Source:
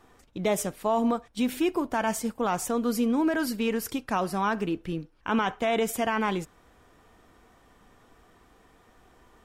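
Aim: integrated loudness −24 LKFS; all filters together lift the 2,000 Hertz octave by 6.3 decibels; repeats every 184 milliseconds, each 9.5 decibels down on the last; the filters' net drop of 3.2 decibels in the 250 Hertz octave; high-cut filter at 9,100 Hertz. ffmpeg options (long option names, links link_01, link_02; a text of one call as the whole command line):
ffmpeg -i in.wav -af "lowpass=9100,equalizer=frequency=250:width_type=o:gain=-4,equalizer=frequency=2000:width_type=o:gain=8.5,aecho=1:1:184|368|552|736:0.335|0.111|0.0365|0.012,volume=3dB" out.wav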